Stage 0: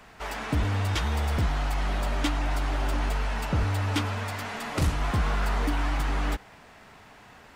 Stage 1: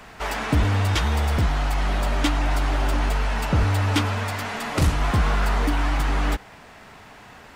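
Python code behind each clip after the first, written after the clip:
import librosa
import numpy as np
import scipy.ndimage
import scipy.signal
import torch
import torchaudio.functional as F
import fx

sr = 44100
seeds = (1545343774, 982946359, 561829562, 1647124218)

y = fx.rider(x, sr, range_db=4, speed_s=2.0)
y = F.gain(torch.from_numpy(y), 5.0).numpy()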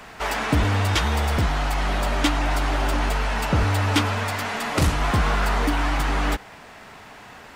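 y = fx.low_shelf(x, sr, hz=180.0, db=-4.5)
y = F.gain(torch.from_numpy(y), 2.5).numpy()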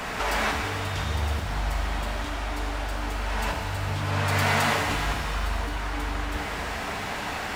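y = fx.over_compress(x, sr, threshold_db=-31.0, ratio=-1.0)
y = fx.rev_shimmer(y, sr, seeds[0], rt60_s=2.5, semitones=7, shimmer_db=-8, drr_db=0.5)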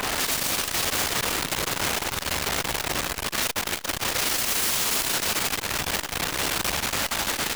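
y = fx.echo_feedback(x, sr, ms=338, feedback_pct=38, wet_db=-4.5)
y = (np.mod(10.0 ** (26.5 / 20.0) * y + 1.0, 2.0) - 1.0) / 10.0 ** (26.5 / 20.0)
y = fx.transformer_sat(y, sr, knee_hz=290.0)
y = F.gain(torch.from_numpy(y), 8.0).numpy()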